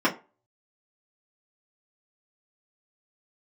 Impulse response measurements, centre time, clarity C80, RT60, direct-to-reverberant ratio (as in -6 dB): 14 ms, 20.5 dB, 0.30 s, -8.0 dB